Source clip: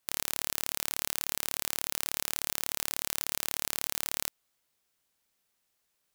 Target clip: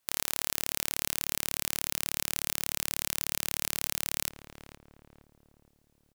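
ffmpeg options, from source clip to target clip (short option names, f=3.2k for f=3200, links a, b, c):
-filter_complex "[0:a]asplit=2[a][b];[b]adelay=466,lowpass=f=860:p=1,volume=-6dB,asplit=2[c][d];[d]adelay=466,lowpass=f=860:p=1,volume=0.53,asplit=2[e][f];[f]adelay=466,lowpass=f=860:p=1,volume=0.53,asplit=2[g][h];[h]adelay=466,lowpass=f=860:p=1,volume=0.53,asplit=2[i][j];[j]adelay=466,lowpass=f=860:p=1,volume=0.53,asplit=2[k][l];[l]adelay=466,lowpass=f=860:p=1,volume=0.53,asplit=2[m][n];[n]adelay=466,lowpass=f=860:p=1,volume=0.53[o];[c][e][g][i][k][m][o]amix=inputs=7:normalize=0[p];[a][p]amix=inputs=2:normalize=0,volume=1dB"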